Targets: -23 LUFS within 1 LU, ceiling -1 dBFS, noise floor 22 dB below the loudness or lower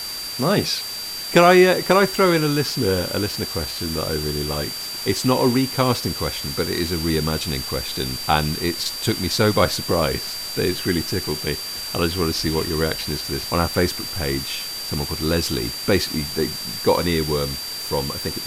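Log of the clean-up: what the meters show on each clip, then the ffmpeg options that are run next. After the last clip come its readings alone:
steady tone 4700 Hz; tone level -29 dBFS; noise floor -30 dBFS; noise floor target -43 dBFS; loudness -21.0 LUFS; peak -1.5 dBFS; loudness target -23.0 LUFS
-> -af "bandreject=f=4.7k:w=30"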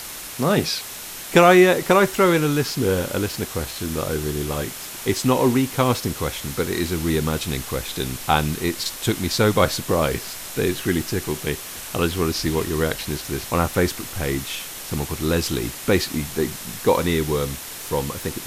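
steady tone none; noise floor -35 dBFS; noise floor target -44 dBFS
-> -af "afftdn=nr=9:nf=-35"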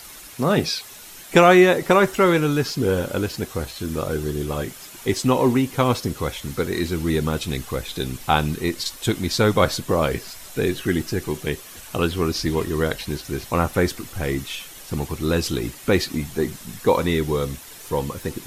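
noise floor -41 dBFS; noise floor target -44 dBFS
-> -af "afftdn=nr=6:nf=-41"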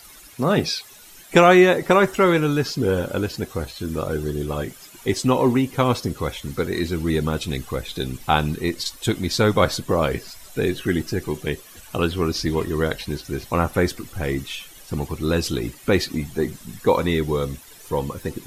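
noise floor -45 dBFS; loudness -22.0 LUFS; peak -2.0 dBFS; loudness target -23.0 LUFS
-> -af "volume=-1dB"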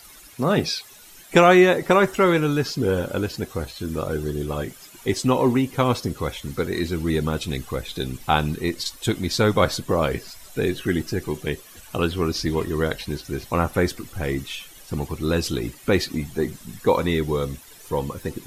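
loudness -23.0 LUFS; peak -3.0 dBFS; noise floor -46 dBFS

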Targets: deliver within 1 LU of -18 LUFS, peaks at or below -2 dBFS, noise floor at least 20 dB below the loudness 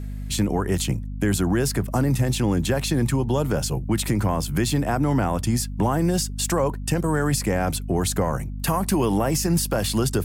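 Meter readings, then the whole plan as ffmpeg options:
hum 50 Hz; harmonics up to 250 Hz; hum level -28 dBFS; loudness -23.0 LUFS; peak -10.5 dBFS; loudness target -18.0 LUFS
-> -af "bandreject=f=50:t=h:w=4,bandreject=f=100:t=h:w=4,bandreject=f=150:t=h:w=4,bandreject=f=200:t=h:w=4,bandreject=f=250:t=h:w=4"
-af "volume=5dB"

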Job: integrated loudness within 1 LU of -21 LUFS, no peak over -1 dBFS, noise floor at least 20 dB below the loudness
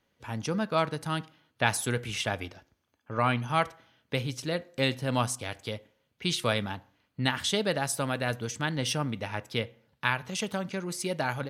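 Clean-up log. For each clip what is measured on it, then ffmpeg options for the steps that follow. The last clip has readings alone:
loudness -30.5 LUFS; peak -7.0 dBFS; loudness target -21.0 LUFS
-> -af "volume=9.5dB,alimiter=limit=-1dB:level=0:latency=1"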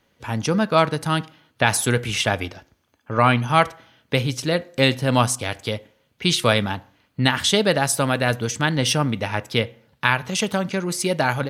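loudness -21.5 LUFS; peak -1.0 dBFS; noise floor -66 dBFS

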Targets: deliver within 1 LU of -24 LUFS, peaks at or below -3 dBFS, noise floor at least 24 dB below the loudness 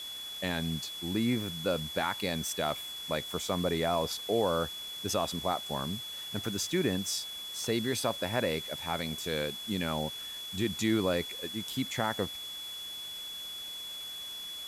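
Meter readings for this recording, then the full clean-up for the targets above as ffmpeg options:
steady tone 3400 Hz; tone level -39 dBFS; noise floor -41 dBFS; noise floor target -57 dBFS; loudness -33.0 LUFS; peak -16.5 dBFS; loudness target -24.0 LUFS
-> -af "bandreject=f=3.4k:w=30"
-af "afftdn=nr=16:nf=-41"
-af "volume=9dB"

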